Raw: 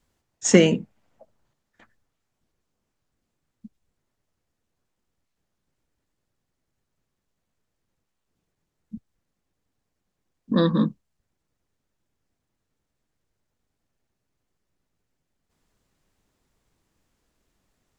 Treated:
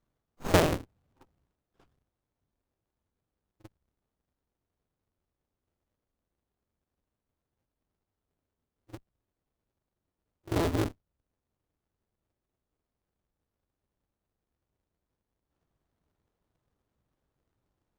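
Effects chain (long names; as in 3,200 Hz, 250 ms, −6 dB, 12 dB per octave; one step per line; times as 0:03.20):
sub-harmonics by changed cycles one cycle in 2, inverted
echo ahead of the sound 44 ms −15 dB
windowed peak hold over 17 samples
level −7.5 dB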